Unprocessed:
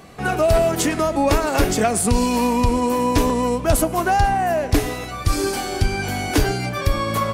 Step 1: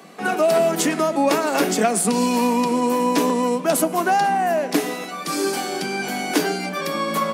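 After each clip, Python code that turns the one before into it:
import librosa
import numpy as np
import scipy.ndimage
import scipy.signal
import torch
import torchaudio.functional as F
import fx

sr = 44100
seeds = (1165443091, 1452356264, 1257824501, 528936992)

y = scipy.signal.sosfilt(scipy.signal.butter(16, 160.0, 'highpass', fs=sr, output='sos'), x)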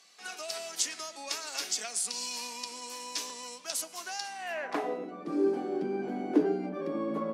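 y = fx.filter_sweep_bandpass(x, sr, from_hz=5400.0, to_hz=330.0, start_s=4.34, end_s=5.04, q=1.7)
y = F.gain(torch.from_numpy(y), -2.0).numpy()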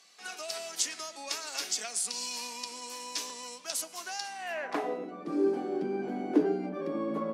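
y = x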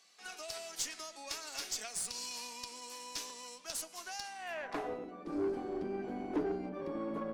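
y = 10.0 ** (-21.0 / 20.0) * np.tanh(x / 10.0 ** (-21.0 / 20.0))
y = fx.cheby_harmonics(y, sr, harmonics=(4,), levels_db=(-20,), full_scale_db=-21.0)
y = F.gain(torch.from_numpy(y), -5.5).numpy()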